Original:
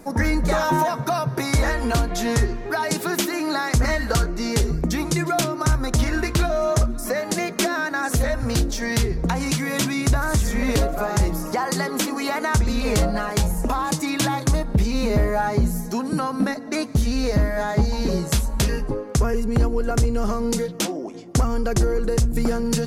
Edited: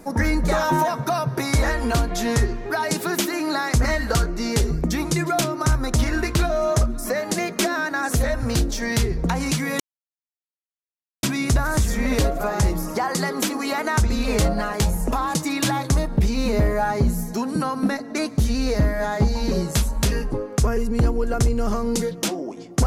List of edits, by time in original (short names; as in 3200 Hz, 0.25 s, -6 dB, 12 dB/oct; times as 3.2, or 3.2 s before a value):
9.8 insert silence 1.43 s